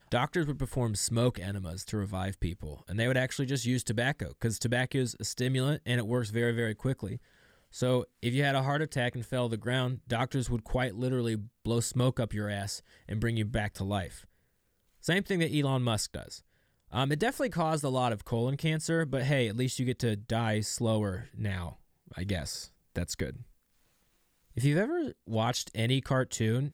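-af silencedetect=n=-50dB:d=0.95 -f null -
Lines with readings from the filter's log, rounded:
silence_start: 23.43
silence_end: 24.51 | silence_duration: 1.08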